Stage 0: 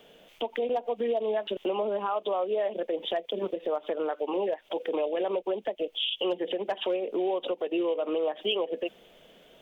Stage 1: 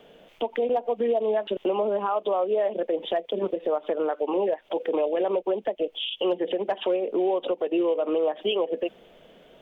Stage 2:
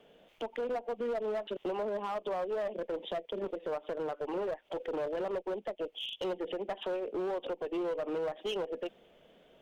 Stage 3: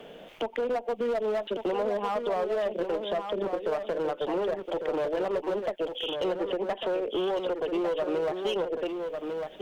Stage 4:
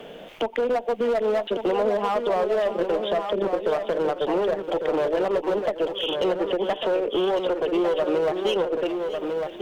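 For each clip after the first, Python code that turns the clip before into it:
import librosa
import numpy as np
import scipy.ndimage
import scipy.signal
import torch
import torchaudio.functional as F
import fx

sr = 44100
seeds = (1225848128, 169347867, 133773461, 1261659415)

y1 = fx.high_shelf(x, sr, hz=2900.0, db=-10.5)
y1 = F.gain(torch.from_numpy(y1), 4.5).numpy()
y2 = fx.wow_flutter(y1, sr, seeds[0], rate_hz=2.1, depth_cents=23.0)
y2 = fx.clip_asym(y2, sr, top_db=-24.0, bottom_db=-19.5)
y2 = F.gain(torch.from_numpy(y2), -8.5).numpy()
y3 = y2 + 10.0 ** (-7.5 / 20.0) * np.pad(y2, (int(1150 * sr / 1000.0), 0))[:len(y2)]
y3 = fx.band_squash(y3, sr, depth_pct=40)
y3 = F.gain(torch.from_numpy(y3), 5.5).numpy()
y4 = y3 + 10.0 ** (-14.0 / 20.0) * np.pad(y3, (int(632 * sr / 1000.0), 0))[:len(y3)]
y4 = F.gain(torch.from_numpy(y4), 5.5).numpy()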